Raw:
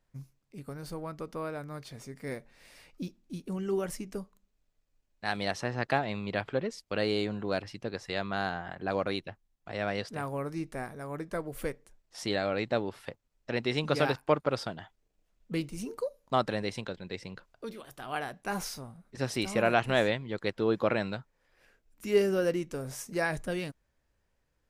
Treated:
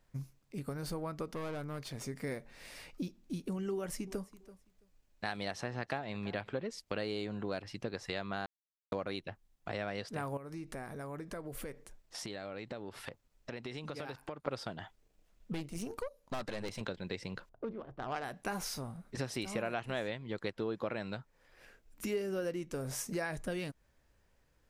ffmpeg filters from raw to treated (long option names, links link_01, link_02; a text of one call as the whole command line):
ffmpeg -i in.wav -filter_complex "[0:a]asettb=1/sr,asplit=3[link_01][link_02][link_03];[link_01]atrim=end=1.344[link_04];[link_02]atrim=start=1.34:end=2.01,asetpts=PTS-STARTPTS,afade=type=in:duration=0.004:curve=qsin,afade=type=out:start_time=0.666:duration=0.004:curve=qsin,aeval=exprs='(tanh(79.4*val(0)+0.5)-tanh(0.5))/79.4':channel_layout=same[link_05];[link_03]atrim=start=2.006[link_06];[link_04][link_05]acrossfade=duration=0.004:curve1=hsin:curve2=qsin[link_07];[link_07][link_06]acrossfade=duration=0.004:curve1=qsin:curve2=hsin,asettb=1/sr,asplit=3[link_08][link_09][link_10];[link_08]atrim=end=3.744[link_11];[link_09]atrim=start=3.74:end=6.64,asetpts=PTS-STARTPTS,afade=type=in:duration=0.004:curve=qsin,afade=type=out:start_time=2.896:duration=0.004:curve=qsin,aecho=1:1:332|664:0.0668|0.0107,atrim=end_sample=127890[link_12];[link_10]atrim=start=6.636[link_13];[link_11][link_12]acrossfade=duration=0.004:curve1=hsin:curve2=qsin[link_14];[link_14][link_13]acrossfade=duration=0.004:curve1=qsin:curve2=hsin,asettb=1/sr,asplit=3[link_15][link_16][link_17];[link_15]atrim=end=10.374[link_18];[link_16]atrim=start=10.37:end=14.48,asetpts=PTS-STARTPTS,afade=type=in:duration=0.004:curve=qsin,afade=type=out:start_time=4.106:duration=0.004:curve=qsin,acompressor=threshold=-45dB:ratio=5:attack=3.2:release=140:knee=1:detection=peak[link_19];[link_17]atrim=start=14.476[link_20];[link_18][link_19]acrossfade=duration=0.004:curve1=hsin:curve2=qsin[link_21];[link_21][link_20]acrossfade=duration=0.004:curve1=qsin:curve2=hsin,asettb=1/sr,asplit=3[link_22][link_23][link_24];[link_22]atrim=end=15.534[link_25];[link_23]atrim=start=15.53:end=16.81,asetpts=PTS-STARTPTS,afade=type=in:duration=0.004:curve=qsin,afade=type=out:start_time=1.276:duration=0.004:curve=qsin,aeval=exprs='(tanh(44.7*val(0)+0.75)-tanh(0.75))/44.7':channel_layout=same[link_26];[link_24]atrim=start=16.806[link_27];[link_25][link_26]acrossfade=duration=0.004:curve1=hsin:curve2=qsin[link_28];[link_28][link_27]acrossfade=duration=0.004:curve1=qsin:curve2=hsin,asettb=1/sr,asplit=3[link_29][link_30][link_31];[link_29]atrim=end=17.494[link_32];[link_30]atrim=start=17.49:end=18.24,asetpts=PTS-STARTPTS,afade=type=in:duration=0.004:curve=qsin,afade=type=out:start_time=0.746:duration=0.004:curve=qsin,adynamicsmooth=sensitivity=3:basefreq=690[link_33];[link_31]atrim=start=18.236[link_34];[link_32][link_33]acrossfade=duration=0.004:curve1=hsin:curve2=qsin[link_35];[link_35][link_34]acrossfade=duration=0.004:curve1=qsin:curve2=hsin,asplit=3[link_36][link_37][link_38];[link_36]atrim=end=8.46,asetpts=PTS-STARTPTS,afade=type=out:start_time=8.456:duration=0.004:curve=hsin[link_39];[link_37]atrim=start=8.46:end=8.92,asetpts=PTS-STARTPTS,volume=0[link_40];[link_38]atrim=start=8.92,asetpts=PTS-STARTPTS,afade=type=in:duration=0.004:curve=hsin[link_41];[link_39][link_40][link_41]concat=n=3:v=0:a=1,acompressor=threshold=-41dB:ratio=4,volume=5dB" out.wav